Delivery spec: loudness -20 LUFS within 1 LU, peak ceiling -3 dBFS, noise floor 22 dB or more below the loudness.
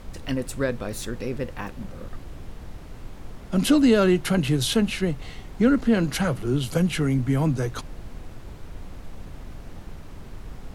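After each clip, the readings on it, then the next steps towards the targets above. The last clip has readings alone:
noise floor -41 dBFS; noise floor target -46 dBFS; loudness -23.5 LUFS; peak -8.0 dBFS; loudness target -20.0 LUFS
-> noise print and reduce 6 dB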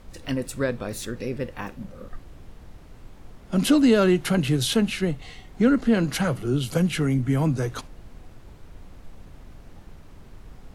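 noise floor -47 dBFS; loudness -23.5 LUFS; peak -7.5 dBFS; loudness target -20.0 LUFS
-> gain +3.5 dB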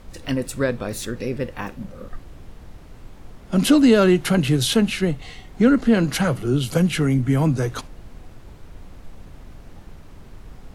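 loudness -20.0 LUFS; peak -4.0 dBFS; noise floor -44 dBFS

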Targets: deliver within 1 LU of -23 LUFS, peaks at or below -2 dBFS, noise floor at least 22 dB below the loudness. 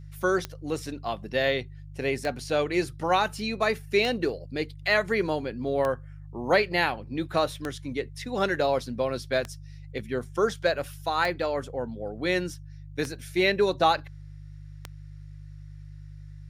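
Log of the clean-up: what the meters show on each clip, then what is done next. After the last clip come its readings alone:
clicks 9; hum 50 Hz; harmonics up to 150 Hz; hum level -41 dBFS; loudness -27.5 LUFS; peak -8.5 dBFS; loudness target -23.0 LUFS
-> de-click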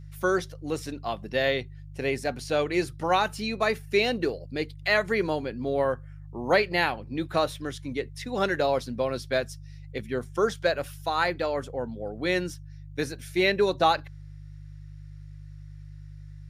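clicks 0; hum 50 Hz; harmonics up to 150 Hz; hum level -41 dBFS
-> de-hum 50 Hz, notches 3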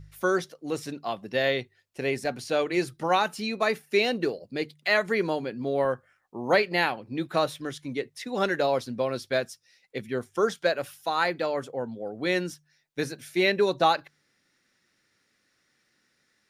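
hum none; loudness -27.5 LUFS; peak -8.5 dBFS; loudness target -23.0 LUFS
-> gain +4.5 dB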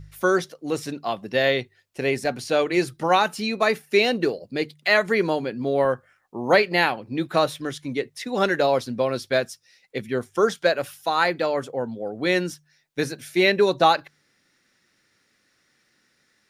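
loudness -23.0 LUFS; peak -4.0 dBFS; noise floor -67 dBFS

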